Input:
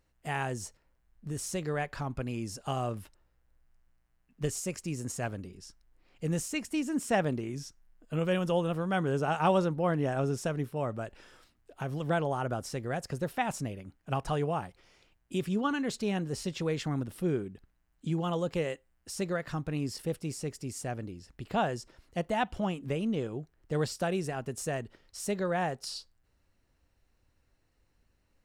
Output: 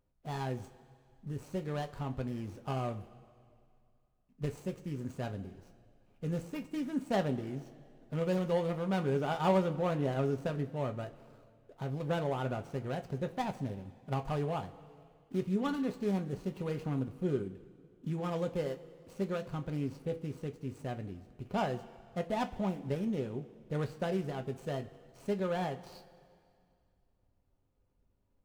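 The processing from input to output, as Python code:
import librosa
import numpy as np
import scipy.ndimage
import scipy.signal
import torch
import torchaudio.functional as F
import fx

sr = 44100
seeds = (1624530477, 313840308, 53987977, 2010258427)

y = scipy.signal.medfilt(x, 25)
y = fx.rev_double_slope(y, sr, seeds[0], early_s=0.21, late_s=2.3, knee_db=-19, drr_db=5.5)
y = F.gain(torch.from_numpy(y), -3.0).numpy()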